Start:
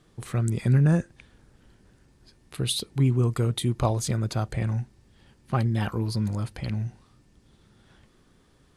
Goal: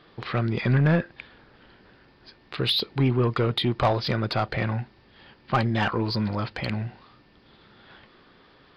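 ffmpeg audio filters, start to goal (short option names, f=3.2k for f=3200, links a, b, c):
-filter_complex "[0:a]aresample=11025,aresample=44100,asplit=2[a][b];[b]highpass=f=720:p=1,volume=18dB,asoftclip=type=tanh:threshold=-11dB[c];[a][c]amix=inputs=2:normalize=0,lowpass=f=3.5k:p=1,volume=-6dB"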